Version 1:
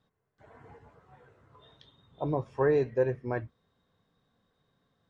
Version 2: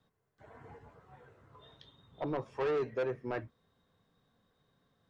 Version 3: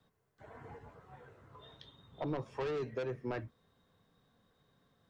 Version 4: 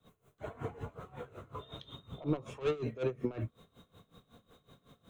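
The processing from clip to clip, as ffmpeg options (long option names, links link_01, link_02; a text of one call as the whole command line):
ffmpeg -i in.wav -filter_complex "[0:a]acrossover=split=190|1100[link_01][link_02][link_03];[link_01]acompressor=threshold=-47dB:ratio=6[link_04];[link_04][link_02][link_03]amix=inputs=3:normalize=0,asoftclip=type=tanh:threshold=-28.5dB" out.wav
ffmpeg -i in.wav -filter_complex "[0:a]acrossover=split=240|3000[link_01][link_02][link_03];[link_02]acompressor=threshold=-39dB:ratio=4[link_04];[link_01][link_04][link_03]amix=inputs=3:normalize=0,volume=2dB" out.wav
ffmpeg -i in.wav -af "superequalizer=9b=0.631:11b=0.447:14b=0.355,alimiter=level_in=12dB:limit=-24dB:level=0:latency=1:release=178,volume=-12dB,aeval=exprs='val(0)*pow(10,-19*(0.5-0.5*cos(2*PI*5.4*n/s))/20)':channel_layout=same,volume=15.5dB" out.wav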